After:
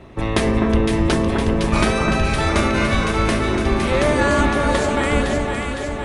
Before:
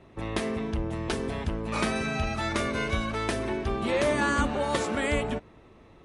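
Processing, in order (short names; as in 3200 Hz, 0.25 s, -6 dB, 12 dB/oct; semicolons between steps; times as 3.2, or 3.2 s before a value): octaver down 2 oct, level -4 dB; vocal rider 2 s; on a send: echo with dull and thin repeats by turns 0.255 s, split 1700 Hz, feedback 80%, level -2.5 dB; on the sum: gain +7 dB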